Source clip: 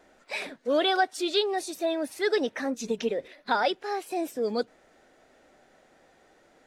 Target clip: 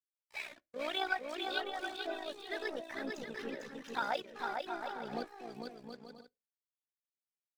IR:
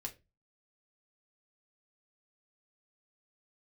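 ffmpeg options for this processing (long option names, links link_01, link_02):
-filter_complex "[0:a]agate=range=-33dB:threshold=-55dB:ratio=3:detection=peak,lowpass=frequency=3500:poles=1,equalizer=frequency=380:width_type=o:width=1.8:gain=-11,tremolo=f=61:d=0.667,aeval=exprs='sgn(val(0))*max(abs(val(0))-0.00299,0)':channel_layout=same,aphaser=in_gain=1:out_gain=1:delay=3.4:decay=0.47:speed=1.1:type=triangular,atempo=0.88,aecho=1:1:450|720|882|979.2|1038:0.631|0.398|0.251|0.158|0.1,asplit=2[link_01][link_02];[1:a]atrim=start_sample=2205,asetrate=48510,aresample=44100[link_03];[link_02][link_03]afir=irnorm=-1:irlink=0,volume=-13.5dB[link_04];[link_01][link_04]amix=inputs=2:normalize=0,adynamicequalizer=threshold=0.00447:dfrequency=2400:dqfactor=0.7:tfrequency=2400:tqfactor=0.7:attack=5:release=100:ratio=0.375:range=3:mode=cutabove:tftype=highshelf,volume=-4dB"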